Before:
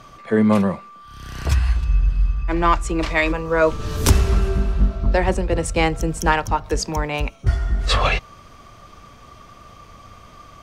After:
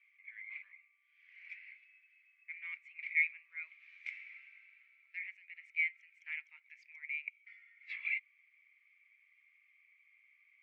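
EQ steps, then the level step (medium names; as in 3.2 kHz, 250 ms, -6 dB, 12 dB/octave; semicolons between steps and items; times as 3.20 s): Butterworth band-pass 2.2 kHz, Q 7.3; distance through air 50 m; differentiator; +6.0 dB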